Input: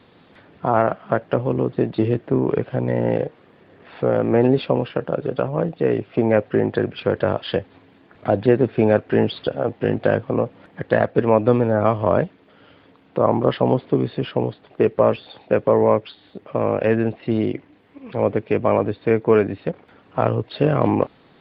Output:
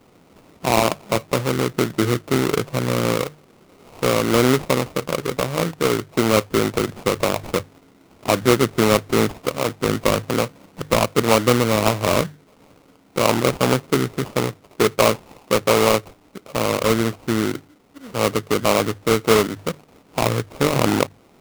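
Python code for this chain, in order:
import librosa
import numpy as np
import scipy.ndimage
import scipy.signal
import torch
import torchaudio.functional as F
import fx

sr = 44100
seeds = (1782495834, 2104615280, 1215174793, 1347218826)

y = fx.high_shelf(x, sr, hz=4100.0, db=-8.0)
y = fx.hum_notches(y, sr, base_hz=50, count=3)
y = fx.sample_hold(y, sr, seeds[0], rate_hz=1700.0, jitter_pct=20)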